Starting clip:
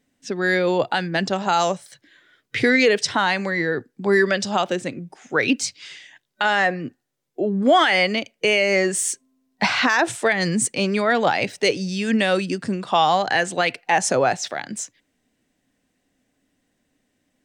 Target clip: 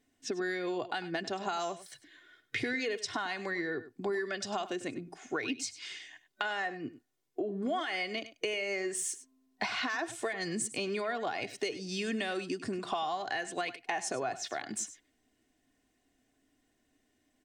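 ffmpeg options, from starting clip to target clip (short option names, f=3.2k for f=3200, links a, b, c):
-filter_complex "[0:a]aecho=1:1:2.8:0.53,acompressor=threshold=-27dB:ratio=6,asplit=2[a][b];[b]aecho=0:1:99:0.178[c];[a][c]amix=inputs=2:normalize=0,volume=-5dB"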